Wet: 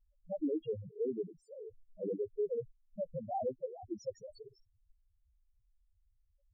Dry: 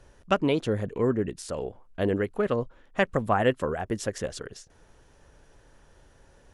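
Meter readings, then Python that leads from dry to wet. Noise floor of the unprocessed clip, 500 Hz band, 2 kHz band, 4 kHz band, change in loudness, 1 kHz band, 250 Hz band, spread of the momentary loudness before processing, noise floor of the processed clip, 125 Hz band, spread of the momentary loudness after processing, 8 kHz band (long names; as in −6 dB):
−58 dBFS, −10.5 dB, below −40 dB, below −25 dB, −11.5 dB, −14.0 dB, −13.0 dB, 11 LU, −74 dBFS, −19.0 dB, 15 LU, below −20 dB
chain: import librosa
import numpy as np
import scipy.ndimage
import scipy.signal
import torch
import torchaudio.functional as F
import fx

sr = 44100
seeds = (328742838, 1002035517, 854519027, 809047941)

y = fx.level_steps(x, sr, step_db=13)
y = fx.spec_topn(y, sr, count=2)
y = y * librosa.db_to_amplitude(-2.5)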